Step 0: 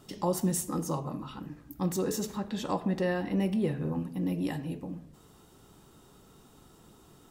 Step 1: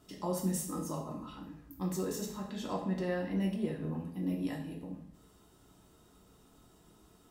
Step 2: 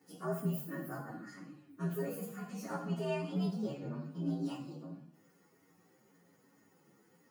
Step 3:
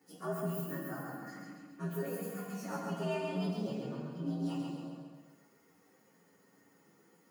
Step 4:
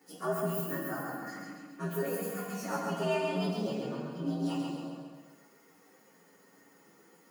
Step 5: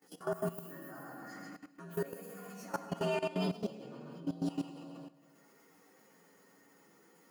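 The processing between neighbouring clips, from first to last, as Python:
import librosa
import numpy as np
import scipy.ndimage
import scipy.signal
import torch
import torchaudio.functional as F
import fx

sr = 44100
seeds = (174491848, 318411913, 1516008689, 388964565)

y1 = fx.rev_double_slope(x, sr, seeds[0], early_s=0.53, late_s=1.8, knee_db=-26, drr_db=0.0)
y1 = F.gain(torch.from_numpy(y1), -8.0).numpy()
y2 = fx.partial_stretch(y1, sr, pct=122)
y2 = scipy.signal.sosfilt(scipy.signal.butter(4, 140.0, 'highpass', fs=sr, output='sos'), y2)
y3 = fx.low_shelf(y2, sr, hz=170.0, db=-5.5)
y3 = fx.echo_feedback(y3, sr, ms=135, feedback_pct=51, wet_db=-3.5)
y4 = fx.highpass(y3, sr, hz=260.0, slope=6)
y4 = F.gain(torch.from_numpy(y4), 6.5).numpy()
y5 = fx.level_steps(y4, sr, step_db=16)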